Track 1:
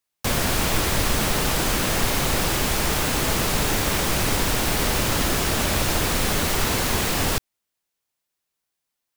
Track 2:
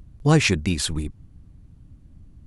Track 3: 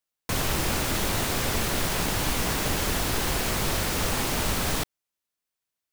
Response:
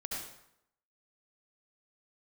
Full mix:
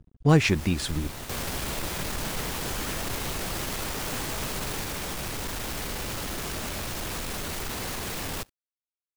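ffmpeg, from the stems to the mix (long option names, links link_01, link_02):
-filter_complex "[0:a]alimiter=limit=-19dB:level=0:latency=1,asoftclip=type=hard:threshold=-29.5dB,adelay=1050,volume=0.5dB,asplit=2[link_01][link_02];[link_02]volume=-17dB[link_03];[1:a]highshelf=frequency=4800:gain=-7.5,volume=-1.5dB,asplit=2[link_04][link_05];[2:a]volume=-10dB[link_06];[link_05]apad=whole_len=261340[link_07];[link_06][link_07]sidechaincompress=threshold=-28dB:ratio=3:attack=28:release=147[link_08];[link_03]aecho=0:1:64|128|192|256|320|384:1|0.4|0.16|0.064|0.0256|0.0102[link_09];[link_01][link_04][link_08][link_09]amix=inputs=4:normalize=0,aeval=exprs='sgn(val(0))*max(abs(val(0))-0.00531,0)':channel_layout=same"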